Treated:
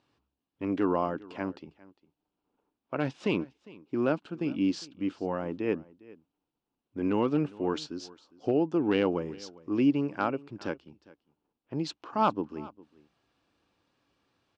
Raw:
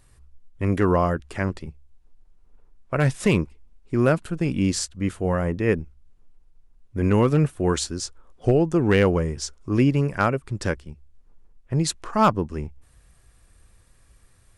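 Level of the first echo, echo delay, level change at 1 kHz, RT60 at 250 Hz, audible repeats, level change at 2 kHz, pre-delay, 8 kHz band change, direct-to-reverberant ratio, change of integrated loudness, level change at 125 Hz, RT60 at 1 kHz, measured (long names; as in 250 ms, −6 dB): −21.5 dB, 405 ms, −6.5 dB, no reverb audible, 1, −10.0 dB, no reverb audible, below −15 dB, no reverb audible, −7.5 dB, −16.0 dB, no reverb audible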